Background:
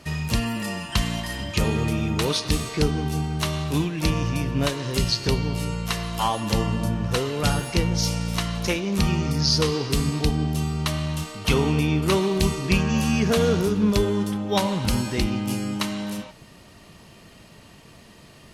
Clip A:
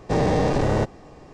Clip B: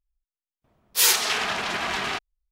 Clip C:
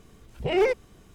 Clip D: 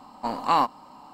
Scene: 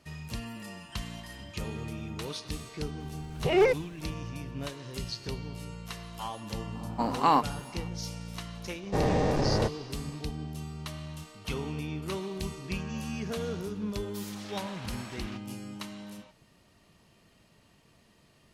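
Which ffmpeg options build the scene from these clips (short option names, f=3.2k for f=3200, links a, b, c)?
-filter_complex "[0:a]volume=-14dB[a];[4:a]equalizer=f=230:t=o:w=2.4:g=6.5[b];[2:a]acompressor=threshold=-30dB:ratio=6:attack=3.2:release=140:knee=1:detection=peak[c];[3:a]atrim=end=1.14,asetpts=PTS-STARTPTS,volume=-0.5dB,afade=t=in:d=0.004:c=hsin,afade=t=out:st=1.136:d=0.004:c=hsin,adelay=3000[d];[b]atrim=end=1.13,asetpts=PTS-STARTPTS,volume=-3.5dB,afade=t=in:d=0.004:c=hsin,afade=t=out:st=1.126:d=0.004:c=hsin,adelay=6750[e];[1:a]atrim=end=1.33,asetpts=PTS-STARTPTS,volume=-6dB,afade=t=in:d=0.004:c=hsin,afade=t=out:st=1.326:d=0.004:c=hsin,adelay=8830[f];[c]atrim=end=2.51,asetpts=PTS-STARTPTS,volume=-13.5dB,afade=t=in:d=0.004:c=hsin,afade=t=out:st=2.506:d=0.004:c=hsin,adelay=13190[g];[a][d][e][f][g]amix=inputs=5:normalize=0"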